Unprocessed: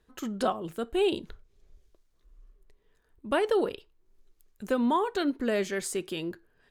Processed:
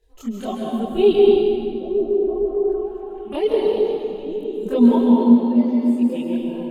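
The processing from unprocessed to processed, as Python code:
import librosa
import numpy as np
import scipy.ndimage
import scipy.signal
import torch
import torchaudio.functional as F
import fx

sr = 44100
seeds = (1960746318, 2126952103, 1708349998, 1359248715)

y = fx.dereverb_blind(x, sr, rt60_s=2.0)
y = fx.hpss(y, sr, part='harmonic', gain_db=9)
y = fx.env_phaser(y, sr, low_hz=210.0, high_hz=1500.0, full_db=-23.5)
y = fx.comb_fb(y, sr, f0_hz=120.0, decay_s=0.38, harmonics='odd', damping=0.0, mix_pct=100, at=(4.95, 5.98), fade=0.02)
y = fx.chorus_voices(y, sr, voices=6, hz=0.86, base_ms=24, depth_ms=2.6, mix_pct=65)
y = fx.echo_stepped(y, sr, ms=458, hz=170.0, octaves=0.7, feedback_pct=70, wet_db=0.0)
y = fx.rev_plate(y, sr, seeds[0], rt60_s=2.5, hf_ratio=0.7, predelay_ms=120, drr_db=-2.0)
y = y * 10.0 ** (2.0 / 20.0)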